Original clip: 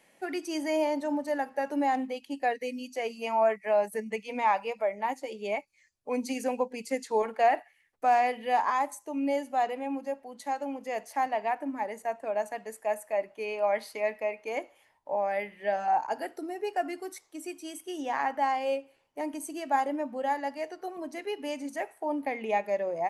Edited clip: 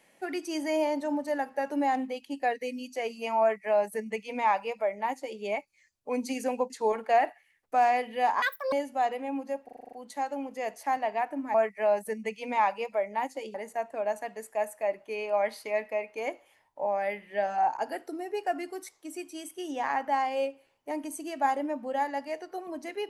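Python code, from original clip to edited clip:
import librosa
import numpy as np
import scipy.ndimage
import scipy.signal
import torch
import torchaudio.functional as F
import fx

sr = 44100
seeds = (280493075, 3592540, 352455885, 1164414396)

y = fx.edit(x, sr, fx.duplicate(start_s=3.41, length_s=2.0, to_s=11.84),
    fx.cut(start_s=6.7, length_s=0.3),
    fx.speed_span(start_s=8.72, length_s=0.58, speed=1.91),
    fx.stutter(start_s=10.22, slice_s=0.04, count=8), tone=tone)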